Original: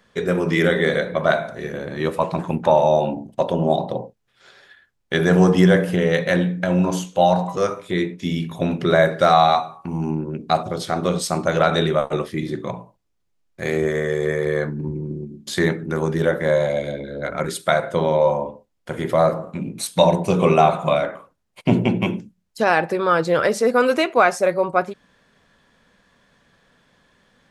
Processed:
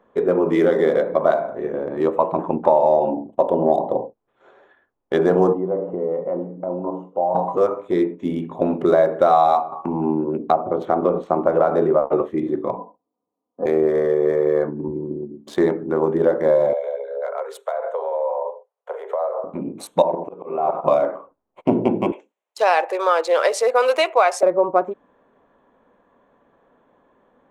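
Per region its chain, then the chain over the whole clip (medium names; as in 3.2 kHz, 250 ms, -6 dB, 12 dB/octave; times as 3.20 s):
5.53–7.35 s: compression 2:1, threshold -27 dBFS + Savitzky-Golay filter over 65 samples + bass shelf 180 Hz -5.5 dB
9.72–12.21 s: low-pass that closes with the level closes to 1.7 kHz, closed at -16.5 dBFS + three bands compressed up and down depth 40%
12.77–13.66 s: elliptic band-pass 100–1100 Hz + comb 4.1 ms, depth 95%
16.73–19.44 s: compression 10:1, threshold -23 dBFS + steep high-pass 420 Hz 96 dB/octave
20.02–20.86 s: tone controls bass -6 dB, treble -14 dB + level held to a coarse grid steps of 10 dB + slow attack 335 ms
22.12–24.43 s: high-pass 510 Hz 24 dB/octave + high-order bell 4.5 kHz +11.5 dB 2.8 oct
whole clip: local Wiener filter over 9 samples; high-order bell 540 Hz +13.5 dB 2.6 oct; compression 2.5:1, threshold -5 dBFS; trim -8 dB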